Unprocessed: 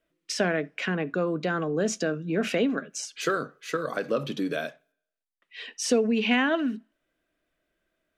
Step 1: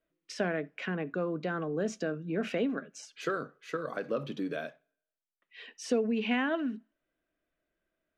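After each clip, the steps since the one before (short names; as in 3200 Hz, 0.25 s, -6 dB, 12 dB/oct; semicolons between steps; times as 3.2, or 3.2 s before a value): high shelf 4300 Hz -11 dB; gain -5.5 dB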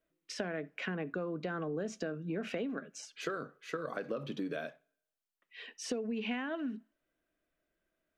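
compressor 6:1, threshold -33 dBFS, peak gain reduction 10 dB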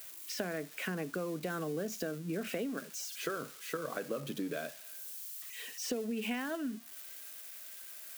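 switching spikes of -37.5 dBFS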